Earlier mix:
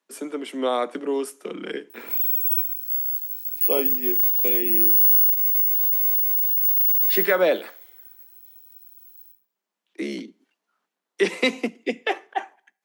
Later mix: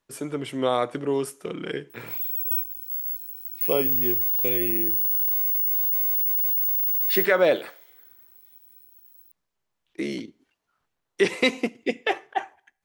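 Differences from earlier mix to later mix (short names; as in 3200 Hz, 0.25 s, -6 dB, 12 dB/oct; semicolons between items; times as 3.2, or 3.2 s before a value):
background: send off; master: remove steep high-pass 180 Hz 96 dB/oct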